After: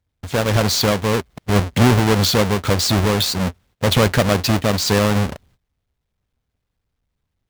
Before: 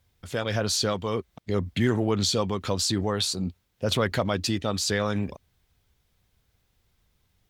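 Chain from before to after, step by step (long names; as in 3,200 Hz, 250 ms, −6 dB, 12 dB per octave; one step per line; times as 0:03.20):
each half-wave held at its own peak
parametric band 340 Hz −3.5 dB 0.22 octaves
noise gate −56 dBFS, range −17 dB
high-shelf EQ 7,700 Hz −5 dB
level +5.5 dB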